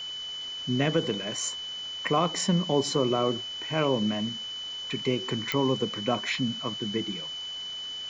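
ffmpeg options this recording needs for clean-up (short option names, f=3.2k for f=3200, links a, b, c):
-af "adeclick=t=4,bandreject=f=3k:w=30,afwtdn=0.0056"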